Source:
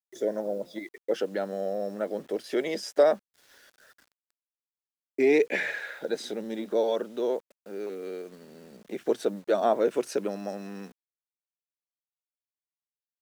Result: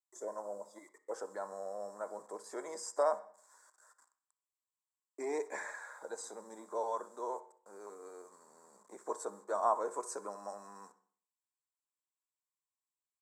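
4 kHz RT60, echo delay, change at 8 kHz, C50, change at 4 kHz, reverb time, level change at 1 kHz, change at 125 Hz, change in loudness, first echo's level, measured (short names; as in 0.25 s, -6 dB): 0.50 s, 63 ms, -0.5 dB, 14.5 dB, -16.5 dB, 0.55 s, -2.5 dB, n/a, -11.0 dB, -19.5 dB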